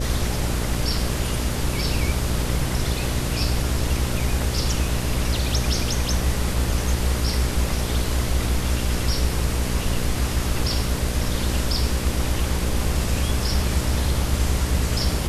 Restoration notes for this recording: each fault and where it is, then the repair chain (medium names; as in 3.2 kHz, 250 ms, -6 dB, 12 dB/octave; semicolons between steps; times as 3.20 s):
buzz 60 Hz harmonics 10 -26 dBFS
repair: de-hum 60 Hz, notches 10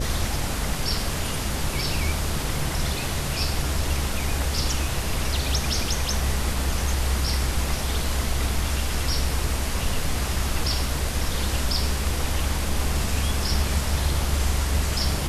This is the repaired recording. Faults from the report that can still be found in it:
nothing left